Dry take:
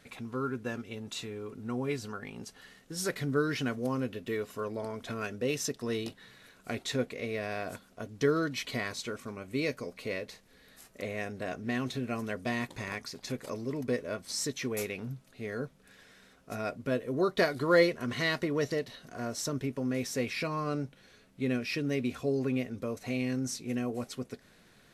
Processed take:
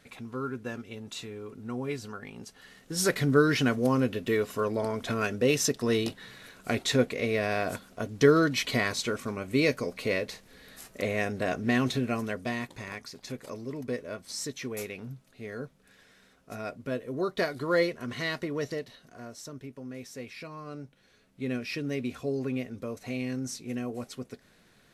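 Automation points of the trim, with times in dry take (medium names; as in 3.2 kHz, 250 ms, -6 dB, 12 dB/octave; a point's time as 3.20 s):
2.57 s -0.5 dB
3.01 s +7 dB
11.89 s +7 dB
12.72 s -2 dB
18.72 s -2 dB
19.40 s -9 dB
20.64 s -9 dB
21.56 s -1 dB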